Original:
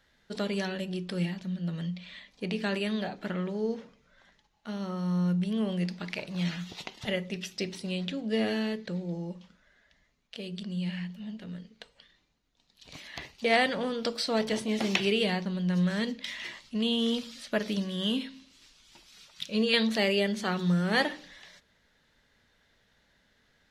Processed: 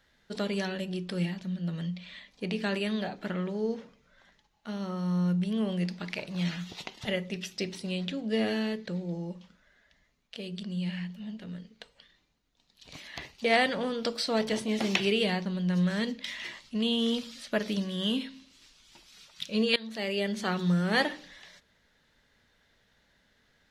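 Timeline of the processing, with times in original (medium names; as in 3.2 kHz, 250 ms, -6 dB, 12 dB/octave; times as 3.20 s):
19.76–20.44 s: fade in, from -21.5 dB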